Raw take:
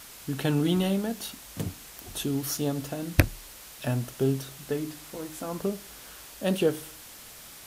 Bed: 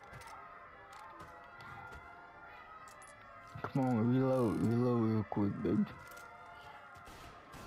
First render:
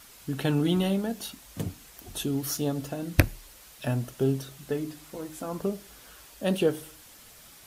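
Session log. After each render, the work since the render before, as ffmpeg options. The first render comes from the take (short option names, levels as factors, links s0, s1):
-af "afftdn=nr=6:nf=-47"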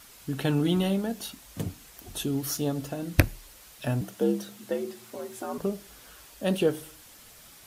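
-filter_complex "[0:a]asettb=1/sr,asplit=3[s0][s1][s2];[s0]atrim=end=4.014[s3];[s1]atrim=start=4.01:end=5.58,asetpts=PTS-STARTPTS,afade=t=in:d=0.004:c=qsin,afade=t=out:st=1.566:d=0.004:c=qsin,afreqshift=68[s4];[s2]atrim=start=5.576[s5];[s3][s4]acrossfade=d=0.004:c1=hsin:c2=qsin[s6];[s6][s5]acrossfade=d=0.004:c1=qsin:c2=hsin"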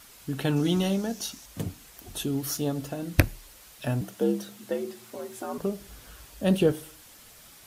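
-filter_complex "[0:a]asettb=1/sr,asplit=3[s0][s1][s2];[s0]atrim=end=0.564[s3];[s1]atrim=start=0.56:end=1.46,asetpts=PTS-STARTPTS,afade=t=in:d=0.004:c=qsin,afade=t=out:st=0.896:d=0.004:c=qsin,equalizer=f=5900:w=2.3:g=10.5[s4];[s2]atrim=start=1.456[s5];[s3][s4]acrossfade=d=0.004:c1=hsin:c2=qsin[s6];[s6][s5]acrossfade=d=0.004:c1=qsin:c2=hsin,asettb=1/sr,asplit=3[s7][s8][s9];[s7]atrim=end=5.804[s10];[s8]atrim=start=5.8:end=6.72,asetpts=PTS-STARTPTS,afade=t=in:d=0.004:c=qsin,afade=t=out:st=0.916:d=0.004:c=qsin,equalizer=f=64:w=0.4:g=10.5[s11];[s9]atrim=start=6.716[s12];[s10][s11]acrossfade=d=0.004:c1=hsin:c2=qsin[s13];[s13][s12]acrossfade=d=0.004:c1=qsin:c2=hsin"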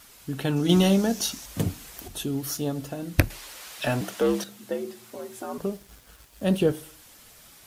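-filter_complex "[0:a]asettb=1/sr,asplit=3[s0][s1][s2];[s0]atrim=end=0.694[s3];[s1]atrim=start=0.69:end=2.08,asetpts=PTS-STARTPTS,afade=t=in:d=0.004:c=qsin,afade=t=out:st=1.386:d=0.004:c=qsin,acontrast=65[s4];[s2]atrim=start=2.076[s5];[s3][s4]acrossfade=d=0.004:c1=hsin:c2=qsin[s6];[s6][s5]acrossfade=d=0.004:c1=qsin:c2=hsin,asettb=1/sr,asplit=3[s7][s8][s9];[s7]atrim=end=3.304[s10];[s8]atrim=start=3.3:end=4.44,asetpts=PTS-STARTPTS,afade=t=in:d=0.004:c=qsin,afade=t=out:st=1.136:d=0.004:c=qsin,asplit=2[s11][s12];[s12]highpass=f=720:p=1,volume=7.94,asoftclip=type=tanh:threshold=0.211[s13];[s11][s13]amix=inputs=2:normalize=0,lowpass=f=5300:p=1,volume=0.501[s14];[s9]atrim=start=4.436[s15];[s10][s14]acrossfade=d=0.004:c1=hsin:c2=qsin[s16];[s16][s15]acrossfade=d=0.004:c1=qsin:c2=hsin,asettb=1/sr,asplit=3[s17][s18][s19];[s17]atrim=end=5.684[s20];[s18]atrim=start=5.68:end=6.65,asetpts=PTS-STARTPTS,afade=t=in:d=0.004:c=qsin,afade=t=out:st=0.966:d=0.004:c=qsin,aeval=exprs='sgn(val(0))*max(abs(val(0))-0.00237,0)':c=same[s21];[s19]atrim=start=6.646[s22];[s20][s21]acrossfade=d=0.004:c1=hsin:c2=qsin[s23];[s23][s22]acrossfade=d=0.004:c1=qsin:c2=hsin"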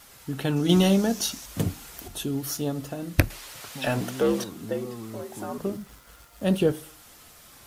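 -filter_complex "[1:a]volume=0.473[s0];[0:a][s0]amix=inputs=2:normalize=0"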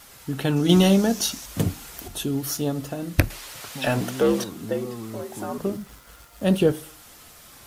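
-af "volume=1.41,alimiter=limit=0.708:level=0:latency=1"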